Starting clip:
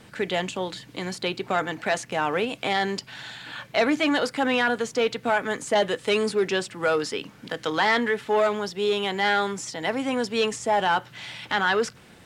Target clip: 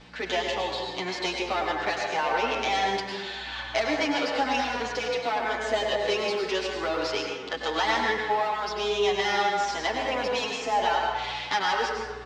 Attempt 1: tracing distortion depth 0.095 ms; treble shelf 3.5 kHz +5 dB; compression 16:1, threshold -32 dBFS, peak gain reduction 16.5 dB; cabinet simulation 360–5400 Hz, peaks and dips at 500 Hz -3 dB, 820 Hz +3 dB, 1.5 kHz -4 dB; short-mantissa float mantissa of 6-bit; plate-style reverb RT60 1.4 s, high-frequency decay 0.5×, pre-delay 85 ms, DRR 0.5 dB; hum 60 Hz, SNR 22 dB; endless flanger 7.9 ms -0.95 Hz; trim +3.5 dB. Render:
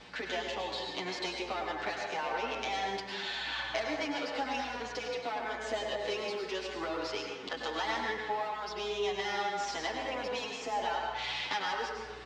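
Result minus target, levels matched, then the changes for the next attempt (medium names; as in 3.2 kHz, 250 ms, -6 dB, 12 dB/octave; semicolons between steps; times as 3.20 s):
compression: peak gain reduction +9 dB
change: compression 16:1, threshold -22.5 dBFS, peak gain reduction 7.5 dB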